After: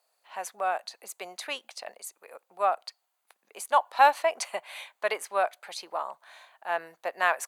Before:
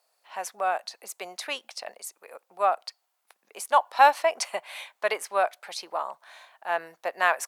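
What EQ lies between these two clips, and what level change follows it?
band-stop 5.4 kHz, Q 9.2; -2.0 dB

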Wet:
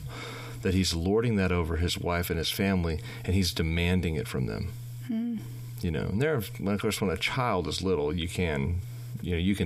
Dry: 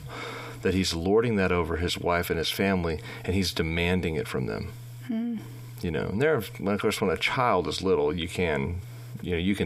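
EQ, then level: bass shelf 240 Hz +11.5 dB; treble shelf 2.6 kHz +8.5 dB; -7.0 dB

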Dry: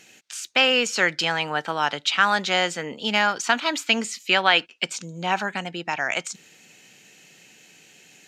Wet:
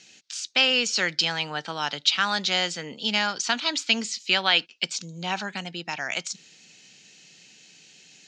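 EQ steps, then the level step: high-pass 120 Hz; four-pole ladder low-pass 5.8 kHz, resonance 30%; tone controls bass +7 dB, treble +15 dB; 0.0 dB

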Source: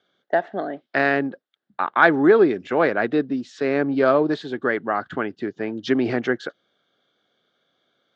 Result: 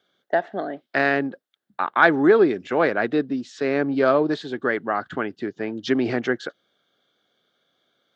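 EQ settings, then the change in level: treble shelf 5.3 kHz +6 dB; -1.0 dB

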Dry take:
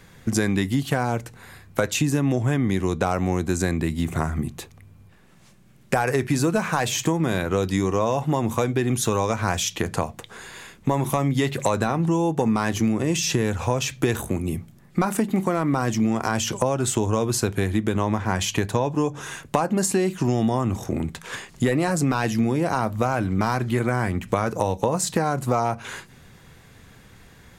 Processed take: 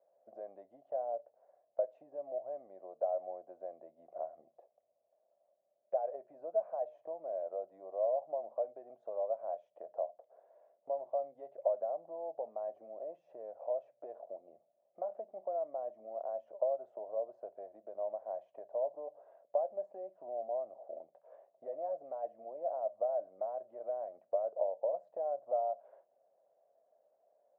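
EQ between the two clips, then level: Butterworth band-pass 620 Hz, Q 5.1; -3.0 dB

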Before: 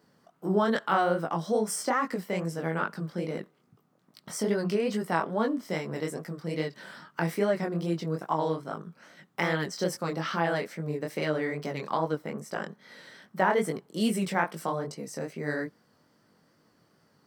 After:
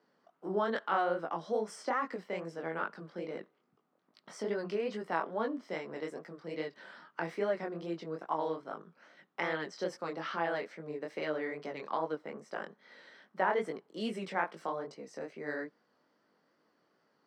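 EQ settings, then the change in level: tone controls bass -5 dB, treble -2 dB; three-band isolator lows -16 dB, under 190 Hz, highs -16 dB, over 7.1 kHz; treble shelf 5.7 kHz -7 dB; -5.0 dB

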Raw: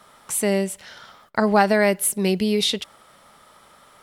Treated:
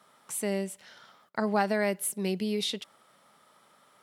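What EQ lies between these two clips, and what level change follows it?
Chebyshev high-pass 160 Hz, order 2; -9.0 dB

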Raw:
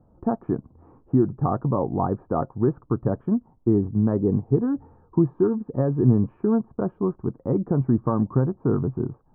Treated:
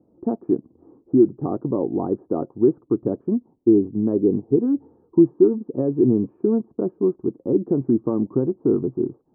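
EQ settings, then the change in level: band-pass filter 340 Hz, Q 2.5; +7.5 dB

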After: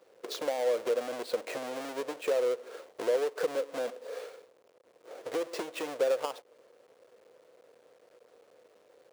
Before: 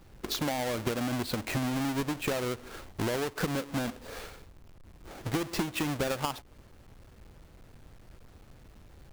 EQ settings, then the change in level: resonant high-pass 490 Hz, resonance Q 6; peaking EQ 14 kHz -7.5 dB 0.34 oct; band-stop 830 Hz, Q 16; -6.0 dB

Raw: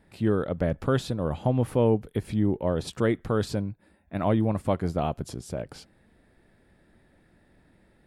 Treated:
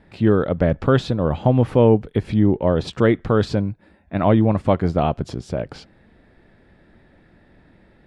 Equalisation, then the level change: low-pass 4.5 kHz 12 dB/octave; +8.0 dB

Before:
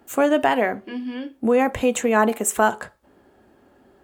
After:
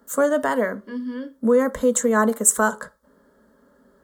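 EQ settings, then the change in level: dynamic bell 8.1 kHz, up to +7 dB, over -41 dBFS, Q 1.2; static phaser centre 510 Hz, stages 8; +1.5 dB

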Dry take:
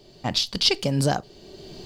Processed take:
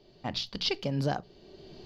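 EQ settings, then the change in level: boxcar filter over 5 samples; hum notches 60/120/180 Hz; -7.0 dB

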